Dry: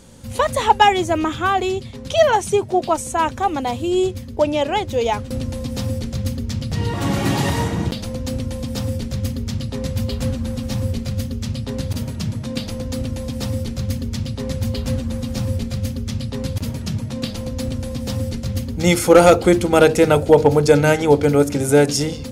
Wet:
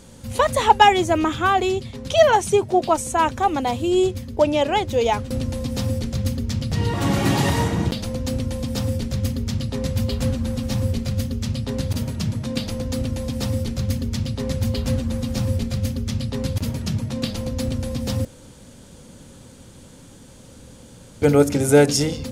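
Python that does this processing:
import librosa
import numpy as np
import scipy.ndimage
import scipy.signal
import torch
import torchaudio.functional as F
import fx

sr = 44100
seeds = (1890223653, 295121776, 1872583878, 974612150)

y = fx.edit(x, sr, fx.room_tone_fill(start_s=18.25, length_s=2.97), tone=tone)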